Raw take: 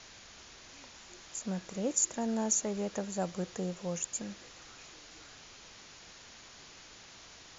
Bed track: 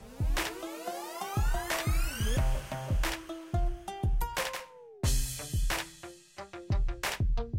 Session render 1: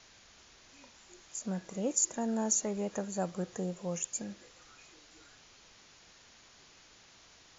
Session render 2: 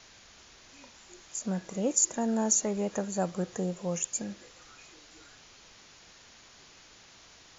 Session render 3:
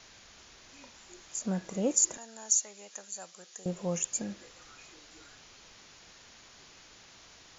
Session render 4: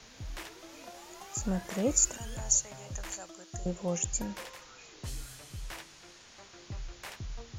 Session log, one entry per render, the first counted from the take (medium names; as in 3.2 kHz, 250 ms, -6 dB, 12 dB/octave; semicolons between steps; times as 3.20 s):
noise print and reduce 6 dB
trim +4 dB
2.17–3.66 s: band-pass filter 6.4 kHz, Q 0.67
add bed track -11.5 dB